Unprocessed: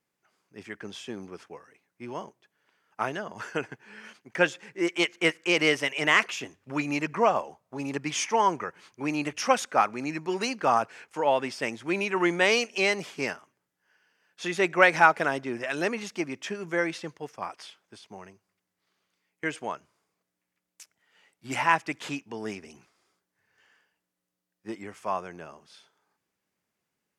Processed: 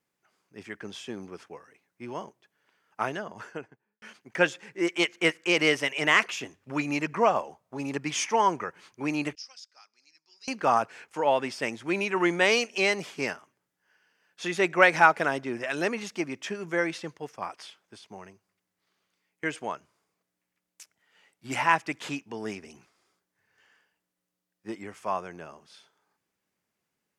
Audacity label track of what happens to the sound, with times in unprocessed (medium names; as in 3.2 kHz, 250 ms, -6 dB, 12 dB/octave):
3.090000	4.020000	studio fade out
9.350000	10.480000	band-pass filter 5 kHz, Q 13